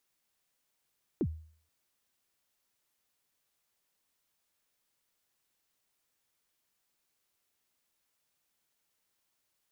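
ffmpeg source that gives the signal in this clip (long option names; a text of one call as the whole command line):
ffmpeg -f lavfi -i "aevalsrc='0.0631*pow(10,-3*t/0.5)*sin(2*PI*(410*0.06/log(79/410)*(exp(log(79/410)*min(t,0.06)/0.06)-1)+79*max(t-0.06,0)))':duration=0.48:sample_rate=44100" out.wav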